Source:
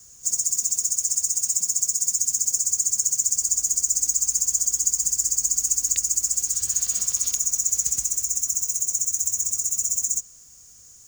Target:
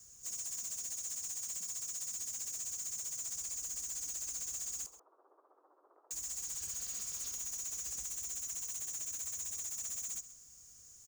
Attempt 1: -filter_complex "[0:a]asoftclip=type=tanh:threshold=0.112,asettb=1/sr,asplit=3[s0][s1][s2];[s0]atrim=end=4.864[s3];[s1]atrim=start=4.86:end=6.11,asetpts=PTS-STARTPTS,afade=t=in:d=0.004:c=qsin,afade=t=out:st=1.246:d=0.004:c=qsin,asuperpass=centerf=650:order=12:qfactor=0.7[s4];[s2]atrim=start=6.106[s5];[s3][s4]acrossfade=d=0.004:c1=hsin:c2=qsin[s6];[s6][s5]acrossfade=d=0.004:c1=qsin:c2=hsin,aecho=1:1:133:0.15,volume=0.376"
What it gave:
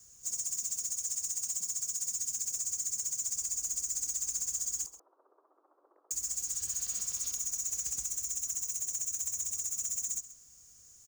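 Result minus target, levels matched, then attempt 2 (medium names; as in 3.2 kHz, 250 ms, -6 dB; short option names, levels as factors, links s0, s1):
saturation: distortion -6 dB
-filter_complex "[0:a]asoftclip=type=tanh:threshold=0.0335,asettb=1/sr,asplit=3[s0][s1][s2];[s0]atrim=end=4.864[s3];[s1]atrim=start=4.86:end=6.11,asetpts=PTS-STARTPTS,afade=t=in:d=0.004:c=qsin,afade=t=out:st=1.246:d=0.004:c=qsin,asuperpass=centerf=650:order=12:qfactor=0.7[s4];[s2]atrim=start=6.106[s5];[s3][s4]acrossfade=d=0.004:c1=hsin:c2=qsin[s6];[s6][s5]acrossfade=d=0.004:c1=qsin:c2=hsin,aecho=1:1:133:0.15,volume=0.376"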